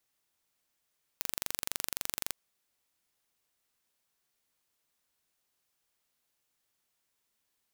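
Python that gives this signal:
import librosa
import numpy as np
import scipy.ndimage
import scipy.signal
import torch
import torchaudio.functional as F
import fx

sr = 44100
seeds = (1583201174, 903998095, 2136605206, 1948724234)

y = 10.0 ** (-5.5 / 20.0) * (np.mod(np.arange(round(1.13 * sr)), round(sr / 23.7)) == 0)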